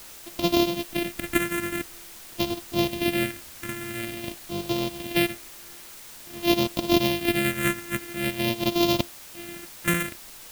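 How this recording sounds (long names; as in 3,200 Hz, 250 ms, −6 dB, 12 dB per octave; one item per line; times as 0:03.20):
a buzz of ramps at a fixed pitch in blocks of 128 samples
phaser sweep stages 4, 0.48 Hz, lowest notch 800–1,600 Hz
a quantiser's noise floor 8 bits, dither triangular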